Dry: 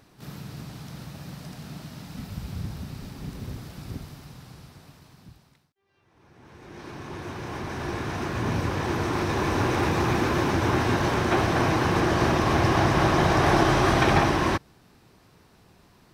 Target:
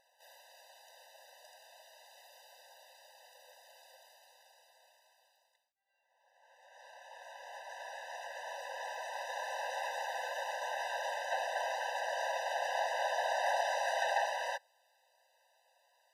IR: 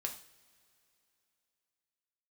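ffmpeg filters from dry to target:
-filter_complex "[0:a]asplit=2[a][b];[1:a]atrim=start_sample=2205,asetrate=79380,aresample=44100[c];[b][c]afir=irnorm=-1:irlink=0,volume=-16dB[d];[a][d]amix=inputs=2:normalize=0,afftfilt=real='re*eq(mod(floor(b*sr/1024/510),2),1)':imag='im*eq(mod(floor(b*sr/1024/510),2),1)':win_size=1024:overlap=0.75,volume=-8.5dB"

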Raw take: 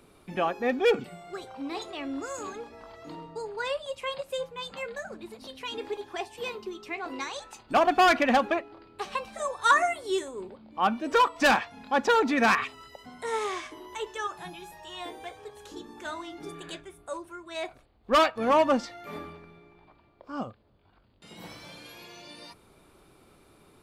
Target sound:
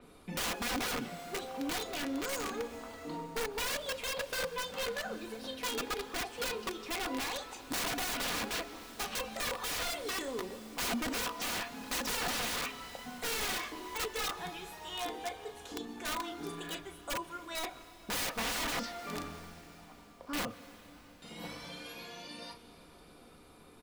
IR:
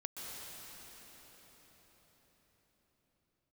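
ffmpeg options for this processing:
-filter_complex "[0:a]acompressor=threshold=-24dB:ratio=5,aecho=1:1:13|38:0.251|0.335,aeval=exprs='(mod(28.2*val(0)+1,2)-1)/28.2':c=same,aecho=1:1:4.1:0.36,asplit=2[a][b];[1:a]atrim=start_sample=2205[c];[b][c]afir=irnorm=-1:irlink=0,volume=-10.5dB[d];[a][d]amix=inputs=2:normalize=0,adynamicequalizer=threshold=0.00447:dfrequency=5500:dqfactor=0.7:tfrequency=5500:tqfactor=0.7:attack=5:release=100:ratio=0.375:range=3:mode=cutabove:tftype=highshelf,volume=-2dB"

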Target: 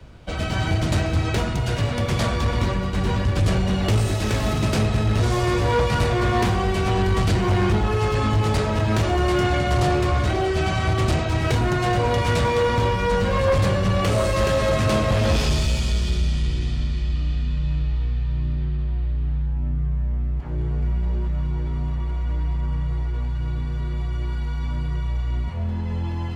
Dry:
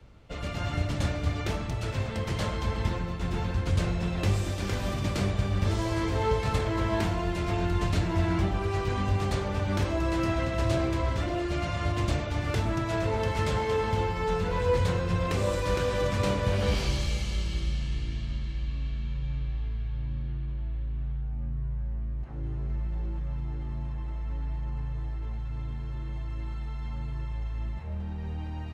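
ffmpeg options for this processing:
-af "asetrate=48069,aresample=44100,aeval=exprs='0.2*sin(PI/2*1.78*val(0)/0.2)':c=same"

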